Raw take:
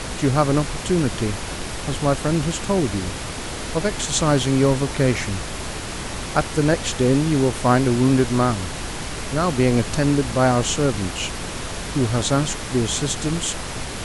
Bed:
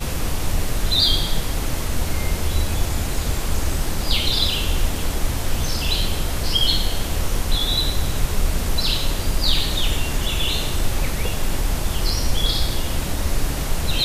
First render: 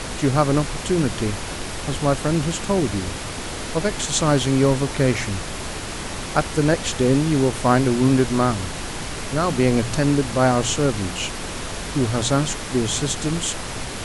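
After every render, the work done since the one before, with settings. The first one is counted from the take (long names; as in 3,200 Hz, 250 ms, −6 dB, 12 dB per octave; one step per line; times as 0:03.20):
hum removal 60 Hz, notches 3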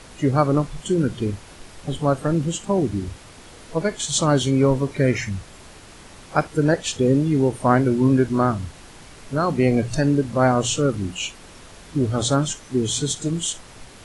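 noise reduction from a noise print 14 dB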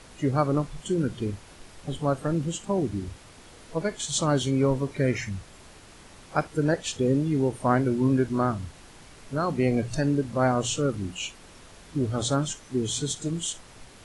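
level −5.5 dB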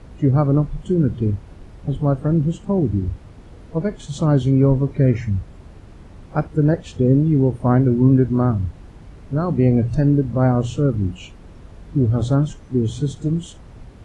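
high-pass filter 42 Hz
spectral tilt −4 dB per octave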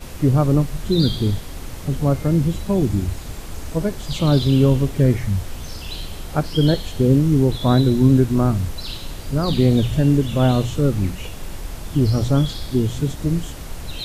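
mix in bed −10 dB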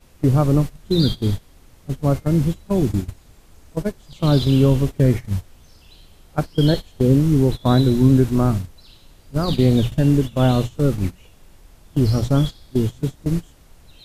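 noise gate −19 dBFS, range −17 dB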